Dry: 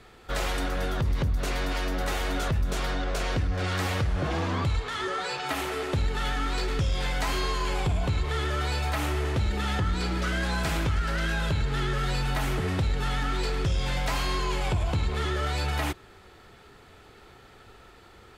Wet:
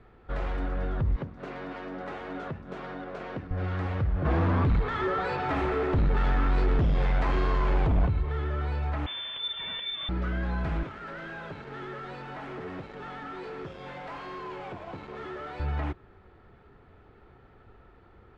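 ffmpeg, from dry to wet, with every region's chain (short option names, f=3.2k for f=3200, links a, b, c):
-filter_complex "[0:a]asettb=1/sr,asplit=3[a][b][c];[a]atrim=end=1.164[d];[b]atrim=start=1.16:end=3.51,asetpts=PTS-STARTPTS,afade=t=in:d=0.004:c=qsin,afade=t=out:st=2.346:d=0.004:c=qsin,highpass=190,aeval=exprs='sgn(val(0))*max(abs(val(0))-0.00316,0)':c=same[e];[c]atrim=start=3.506[f];[d][e]acrossfade=d=0.004:c1=hsin:c2=qsin[g];[g][f]acrossfade=d=0.004:c1=qsin:c2=hsin,asettb=1/sr,asplit=3[h][i][j];[h]atrim=end=4.254[k];[i]atrim=start=4.25:end=8.07,asetpts=PTS-STARTPTS,afade=t=in:d=0.004:c=qsin,afade=t=out:st=3.816:d=0.004:c=qsin,bandreject=f=2.9k:w=19,aeval=exprs='0.119*sin(PI/2*2*val(0)/0.119)':c=same,aecho=1:1:912:0.112,atrim=end_sample=168462[l];[j]atrim=start=8.066[m];[k][l]acrossfade=d=0.004:c1=hsin:c2=qsin[n];[n][m]acrossfade=d=0.004:c1=qsin:c2=hsin,asettb=1/sr,asplit=3[o][p][q];[o]atrim=end=9.064[r];[p]atrim=start=9.06:end=10.09,asetpts=PTS-STARTPTS,afade=t=in:d=0.004:c=qsin,afade=t=out:st=1.026:d=0.004:c=qsin,equalizer=f=61:w=1.9:g=13.5,lowpass=f=3.1k:t=q:w=0.5098,lowpass=f=3.1k:t=q:w=0.6013,lowpass=f=3.1k:t=q:w=0.9,lowpass=f=3.1k:t=q:w=2.563,afreqshift=-3600[s];[q]atrim=start=10.086[t];[r][s]acrossfade=d=0.004:c1=hsin:c2=qsin[u];[u][t]acrossfade=d=0.004:c1=qsin:c2=hsin,asettb=1/sr,asplit=3[v][w][x];[v]atrim=end=10.834[y];[w]atrim=start=10.83:end=15.6,asetpts=PTS-STARTPTS,afade=t=in:d=0.004:c=qsin,afade=t=out:st=4.766:d=0.004:c=qsin,highpass=300,asoftclip=type=hard:threshold=-32.5dB,acrusher=bits=5:mix=0:aa=0.5[z];[x]atrim=start=15.596[aa];[y][z]acrossfade=d=0.004:c1=hsin:c2=qsin[ab];[ab][aa]acrossfade=d=0.004:c1=qsin:c2=hsin,lowpass=1.4k,equalizer=f=770:t=o:w=2.9:g=-4.5"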